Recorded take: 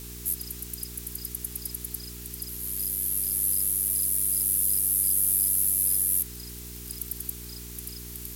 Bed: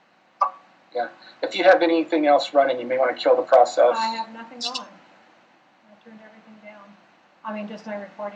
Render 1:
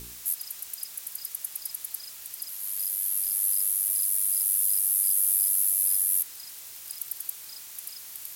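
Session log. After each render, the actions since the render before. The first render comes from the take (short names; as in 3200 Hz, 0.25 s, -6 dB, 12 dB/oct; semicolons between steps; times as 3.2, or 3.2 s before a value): de-hum 60 Hz, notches 12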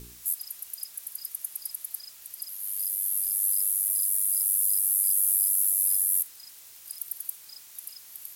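noise print and reduce 6 dB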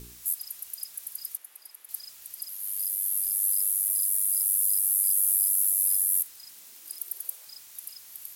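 1.37–1.89 three-band isolator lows -22 dB, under 260 Hz, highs -12 dB, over 3000 Hz; 6.49–7.45 resonant high-pass 170 Hz -> 600 Hz, resonance Q 3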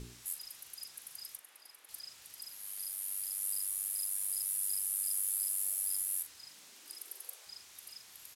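air absorption 55 m; doubler 41 ms -11 dB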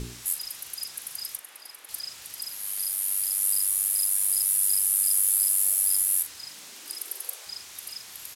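gain +11.5 dB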